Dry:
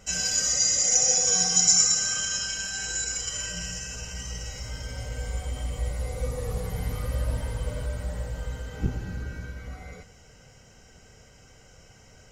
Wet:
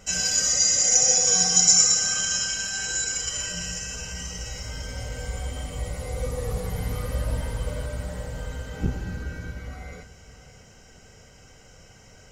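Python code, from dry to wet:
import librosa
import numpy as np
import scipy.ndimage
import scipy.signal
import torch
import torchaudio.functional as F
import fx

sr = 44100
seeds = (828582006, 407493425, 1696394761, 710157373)

p1 = fx.hum_notches(x, sr, base_hz=60, count=2)
p2 = p1 + fx.echo_single(p1, sr, ms=609, db=-15.5, dry=0)
y = F.gain(torch.from_numpy(p2), 2.5).numpy()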